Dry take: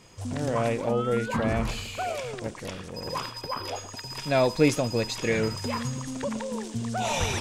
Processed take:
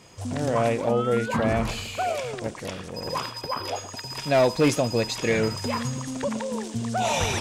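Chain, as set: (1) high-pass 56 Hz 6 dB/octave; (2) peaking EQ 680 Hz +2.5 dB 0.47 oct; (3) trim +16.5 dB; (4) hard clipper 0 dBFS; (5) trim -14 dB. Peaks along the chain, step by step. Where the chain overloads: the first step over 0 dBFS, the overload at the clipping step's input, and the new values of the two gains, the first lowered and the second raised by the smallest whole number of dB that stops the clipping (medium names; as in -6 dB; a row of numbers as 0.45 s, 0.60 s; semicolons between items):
-9.0 dBFS, -8.5 dBFS, +8.0 dBFS, 0.0 dBFS, -14.0 dBFS; step 3, 8.0 dB; step 3 +8.5 dB, step 5 -6 dB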